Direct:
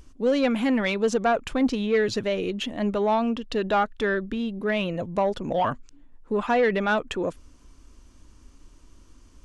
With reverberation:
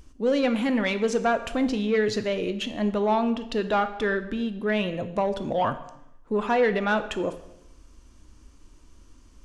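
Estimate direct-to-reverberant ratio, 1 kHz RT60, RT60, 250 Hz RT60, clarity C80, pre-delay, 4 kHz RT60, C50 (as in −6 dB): 9.5 dB, 0.80 s, 0.85 s, 0.85 s, 15.0 dB, 5 ms, 0.80 s, 13.0 dB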